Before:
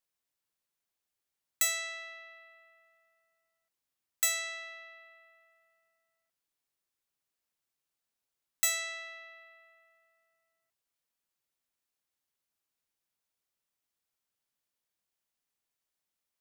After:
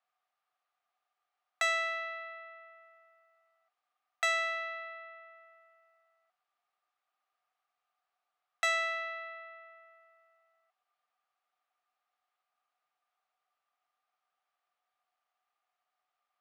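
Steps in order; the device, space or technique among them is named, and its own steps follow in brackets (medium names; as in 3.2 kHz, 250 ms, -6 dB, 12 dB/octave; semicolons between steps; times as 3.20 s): tin-can telephone (band-pass 680–2700 Hz; small resonant body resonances 740/1200 Hz, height 18 dB, ringing for 50 ms); trim +5.5 dB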